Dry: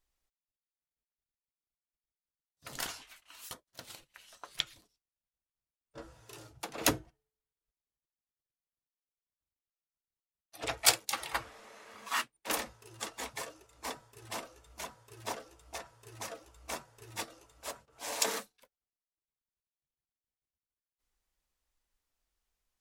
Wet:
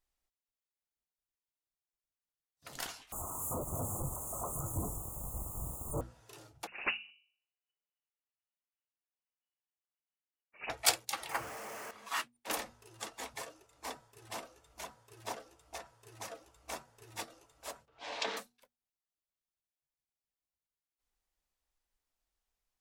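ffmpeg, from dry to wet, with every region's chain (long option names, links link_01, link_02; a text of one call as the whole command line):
ffmpeg -i in.wav -filter_complex "[0:a]asettb=1/sr,asplit=3[link_01][link_02][link_03];[link_01]atrim=end=3.124[link_04];[link_02]atrim=start=3.12:end=6.01,asetpts=PTS-STARTPTS,afade=type=in:duration=0.004:curve=qsin,afade=type=out:start_time=2.886:duration=0.004:curve=qsin,aeval=exprs='val(0)+0.5*0.0355*sgn(val(0))':channel_layout=same,asuperstop=centerf=3000:order=20:qfactor=0.54,equalizer=frequency=82:width=0.58:gain=13[link_05];[link_03]atrim=start=6.006[link_06];[link_04][link_05]acrossfade=duration=0.004:curve1=hsin:curve2=qsin[link_07];[link_07][link_06]acrossfade=duration=0.004:curve1=qsin:curve2=hsin,asettb=1/sr,asplit=3[link_08][link_09][link_10];[link_08]atrim=end=6.674[link_11];[link_09]atrim=start=6.67:end=10.7,asetpts=PTS-STARTPTS,afade=type=in:duration=0.004:curve=qsin,afade=type=out:start_time=4.026:duration=0.004:curve=qsin,bandreject=frequency=49.95:width_type=h:width=4,bandreject=frequency=99.9:width_type=h:width=4,bandreject=frequency=149.85:width_type=h:width=4,bandreject=frequency=199.8:width_type=h:width=4,bandreject=frequency=249.75:width_type=h:width=4,bandreject=frequency=299.7:width_type=h:width=4,bandreject=frequency=349.65:width_type=h:width=4,bandreject=frequency=399.6:width_type=h:width=4,bandreject=frequency=449.55:width_type=h:width=4,bandreject=frequency=499.5:width_type=h:width=4,bandreject=frequency=549.45:width_type=h:width=4,bandreject=frequency=599.4:width_type=h:width=4,bandreject=frequency=649.35:width_type=h:width=4,bandreject=frequency=699.3:width_type=h:width=4,bandreject=frequency=749.25:width_type=h:width=4,bandreject=frequency=799.2:width_type=h:width=4,lowpass=frequency=2600:width_type=q:width=0.5098,lowpass=frequency=2600:width_type=q:width=0.6013,lowpass=frequency=2600:width_type=q:width=0.9,lowpass=frequency=2600:width_type=q:width=2.563,afreqshift=-3000[link_12];[link_10]atrim=start=10.696[link_13];[link_11][link_12]acrossfade=duration=0.004:curve1=hsin:curve2=qsin[link_14];[link_14][link_13]acrossfade=duration=0.004:curve1=qsin:curve2=hsin,asettb=1/sr,asplit=3[link_15][link_16][link_17];[link_15]atrim=end=11.294[link_18];[link_16]atrim=start=11.29:end=11.91,asetpts=PTS-STARTPTS,afade=type=in:duration=0.004:curve=qsin,afade=type=out:start_time=0.616:duration=0.004:curve=qsin,aeval=exprs='val(0)+0.5*0.0141*sgn(val(0))':channel_layout=same,highpass=88,equalizer=frequency=3800:width=2.8:gain=-13[link_19];[link_17]atrim=start=11.906[link_20];[link_18][link_19]acrossfade=duration=0.004:curve1=hsin:curve2=qsin[link_21];[link_21][link_20]acrossfade=duration=0.004:curve1=qsin:curve2=hsin,asettb=1/sr,asplit=3[link_22][link_23][link_24];[link_22]atrim=end=17.884[link_25];[link_23]atrim=start=17.88:end=18.37,asetpts=PTS-STARTPTS,afade=type=in:duration=0.004:curve=qsin,afade=type=out:start_time=0.486:duration=0.004:curve=qsin,lowpass=frequency=3700:width=0.5412,lowpass=frequency=3700:width=1.3066,aemphasis=mode=production:type=75fm[link_26];[link_24]atrim=start=18.366[link_27];[link_25][link_26]acrossfade=duration=0.004:curve1=hsin:curve2=qsin[link_28];[link_28][link_27]acrossfade=duration=0.004:curve1=qsin:curve2=hsin,equalizer=frequency=750:width_type=o:width=0.44:gain=3,bandreject=frequency=60:width_type=h:width=6,bandreject=frequency=120:width_type=h:width=6,bandreject=frequency=180:width_type=h:width=6,bandreject=frequency=240:width_type=h:width=6,volume=-3.5dB" out.wav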